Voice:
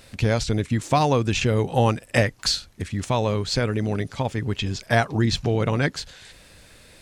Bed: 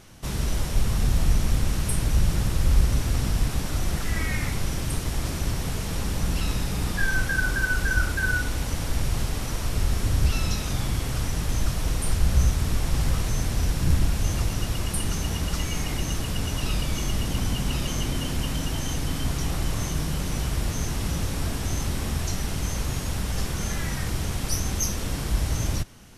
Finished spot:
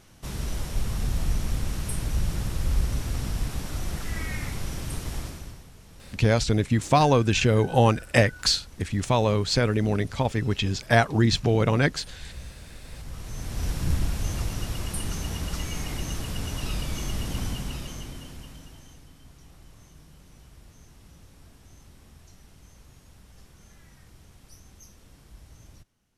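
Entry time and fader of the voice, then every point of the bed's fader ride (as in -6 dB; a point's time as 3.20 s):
6.00 s, +0.5 dB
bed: 5.18 s -5 dB
5.69 s -21 dB
12.79 s -21 dB
13.68 s -4 dB
17.44 s -4 dB
19.15 s -24.5 dB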